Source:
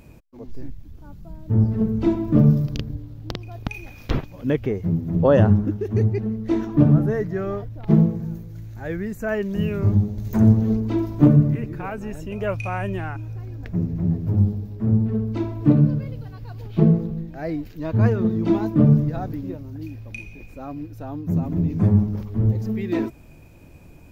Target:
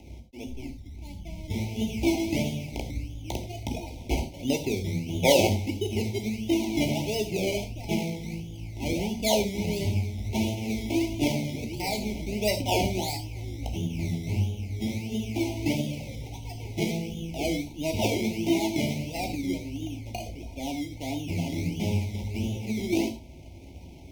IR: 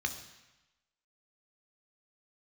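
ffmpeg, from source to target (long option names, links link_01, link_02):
-filter_complex "[0:a]equalizer=frequency=1500:width=3.3:gain=12,acrossover=split=490[link_01][link_02];[link_01]acompressor=threshold=-27dB:ratio=6[link_03];[link_03][link_02]amix=inputs=2:normalize=0,acrusher=samples=19:mix=1:aa=0.000001:lfo=1:lforange=11.4:lforate=1.5,asuperstop=centerf=1400:order=20:qfactor=1.2[link_04];[1:a]atrim=start_sample=2205,atrim=end_sample=4410,asetrate=39690,aresample=44100[link_05];[link_04][link_05]afir=irnorm=-1:irlink=0,volume=-2dB"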